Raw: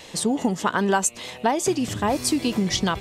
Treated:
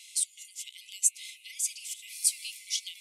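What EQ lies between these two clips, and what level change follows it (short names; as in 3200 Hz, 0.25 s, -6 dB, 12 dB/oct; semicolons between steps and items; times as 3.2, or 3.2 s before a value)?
brick-wall FIR high-pass 2000 Hz; bell 10000 Hz +13 dB 0.82 oct; -8.5 dB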